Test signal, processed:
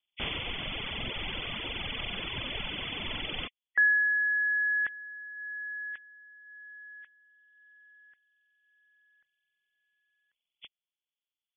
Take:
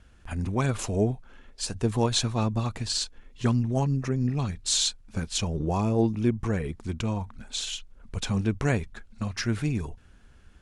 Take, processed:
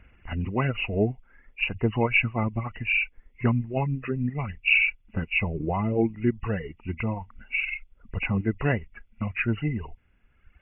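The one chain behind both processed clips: knee-point frequency compression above 1.9 kHz 4:1; reverb removal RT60 1.6 s; trim +1.5 dB

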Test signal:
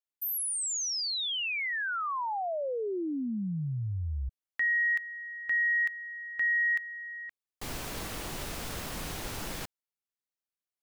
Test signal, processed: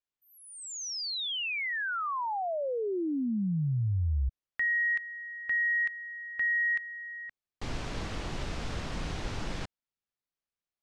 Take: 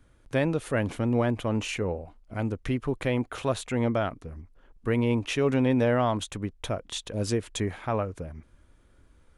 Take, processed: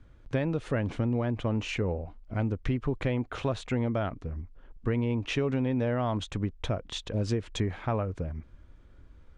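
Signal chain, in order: Bessel low-pass 4.9 kHz, order 4; bass shelf 190 Hz +6.5 dB; compression, threshold -24 dBFS

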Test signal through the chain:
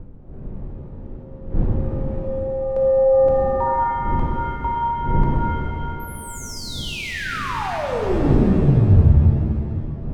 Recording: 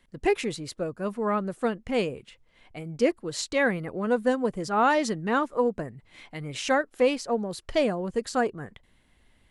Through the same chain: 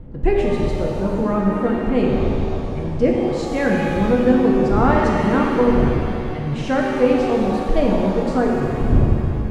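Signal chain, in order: wind noise 340 Hz -41 dBFS; RIAA curve playback; pitch-shifted reverb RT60 2.6 s, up +7 st, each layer -8 dB, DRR -2 dB

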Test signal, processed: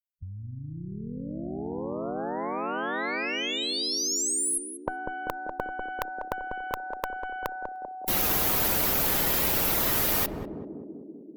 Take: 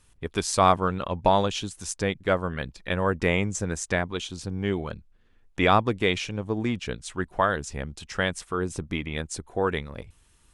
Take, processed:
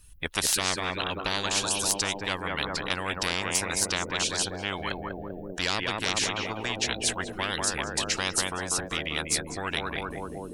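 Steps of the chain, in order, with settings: expander on every frequency bin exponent 1.5; on a send: band-passed feedback delay 195 ms, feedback 79%, band-pass 310 Hz, level -4 dB; on the sum: Chebyshev shaper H 3 -43 dB, 4 -31 dB, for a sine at -6.5 dBFS; spectrum-flattening compressor 10:1; trim +5 dB

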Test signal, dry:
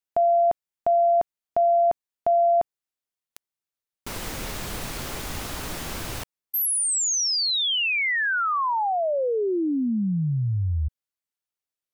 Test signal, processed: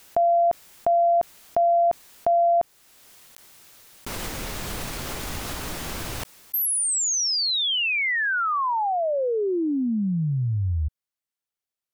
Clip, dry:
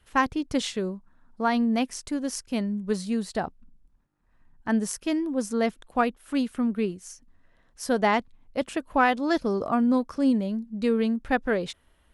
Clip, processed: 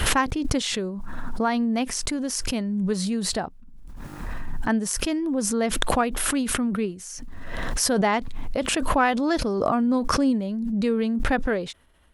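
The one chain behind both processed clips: swell ahead of each attack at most 21 dB/s

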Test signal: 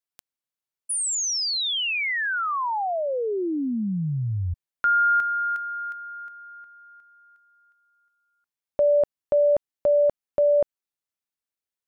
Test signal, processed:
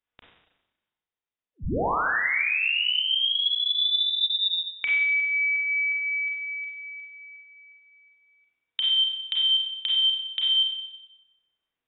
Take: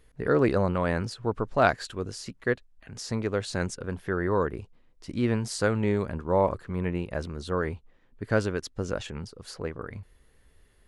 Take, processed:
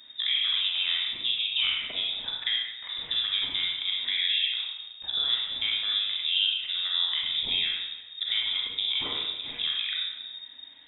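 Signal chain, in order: compression 6:1, threshold -34 dBFS; Schroeder reverb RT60 0.98 s, combs from 31 ms, DRR -2.5 dB; frequency inversion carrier 3.7 kHz; trim +5.5 dB

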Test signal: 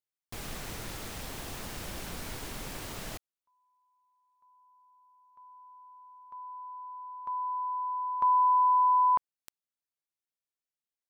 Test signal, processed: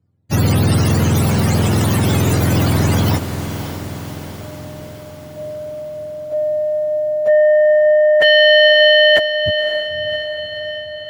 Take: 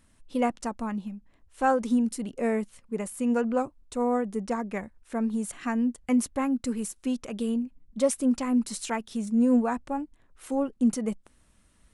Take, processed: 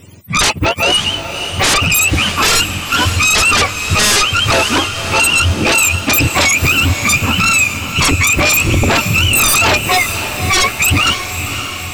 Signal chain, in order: spectrum inverted on a logarithmic axis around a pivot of 780 Hz; sine folder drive 18 dB, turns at -12.5 dBFS; echo that smears into a reverb 559 ms, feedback 62%, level -9 dB; trim +4 dB

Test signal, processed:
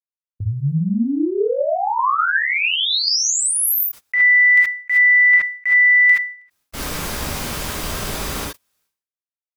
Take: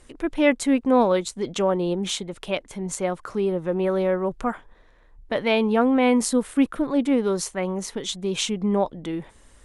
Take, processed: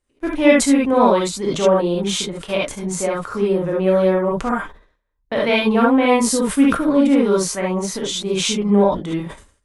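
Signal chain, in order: gated-style reverb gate 90 ms rising, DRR -3.5 dB; gate -34 dBFS, range -26 dB; decay stretcher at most 120 dB/s; trim +1 dB

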